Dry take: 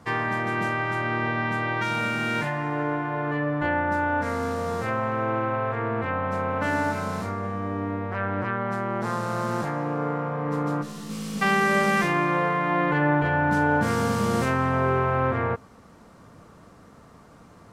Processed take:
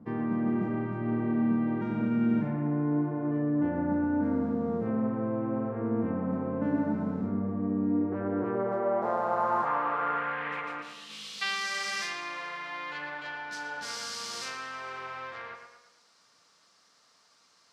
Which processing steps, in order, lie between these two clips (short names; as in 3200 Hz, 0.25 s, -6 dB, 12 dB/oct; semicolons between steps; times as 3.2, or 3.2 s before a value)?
9.65–10.6 band noise 420–2800 Hz -43 dBFS; on a send: tape echo 0.114 s, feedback 51%, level -6.5 dB, low-pass 3900 Hz; on the sum: band-pass sweep 230 Hz -> 4900 Hz, 7.82–11.68; gain +5.5 dB